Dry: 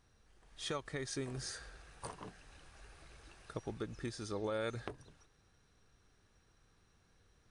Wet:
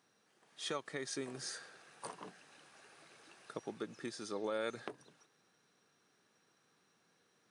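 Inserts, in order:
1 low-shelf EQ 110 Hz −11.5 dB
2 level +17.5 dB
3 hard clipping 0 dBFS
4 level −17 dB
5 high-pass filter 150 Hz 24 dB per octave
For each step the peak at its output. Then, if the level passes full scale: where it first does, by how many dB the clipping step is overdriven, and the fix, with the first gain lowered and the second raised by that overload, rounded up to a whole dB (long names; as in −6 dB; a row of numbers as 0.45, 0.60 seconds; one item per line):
−21.5, −4.0, −4.0, −21.0, −23.0 dBFS
no step passes full scale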